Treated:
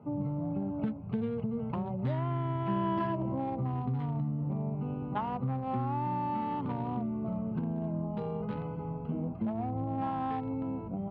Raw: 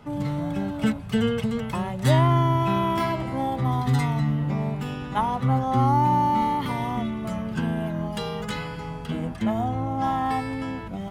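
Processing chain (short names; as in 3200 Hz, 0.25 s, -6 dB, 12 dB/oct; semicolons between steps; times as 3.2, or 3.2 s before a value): Wiener smoothing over 25 samples; HPF 96 Hz; air absorption 380 m; compressor 5:1, threshold -29 dBFS, peak gain reduction 12 dB; 2.68–3.35 ripple EQ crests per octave 1.3, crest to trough 8 dB; gain -1 dB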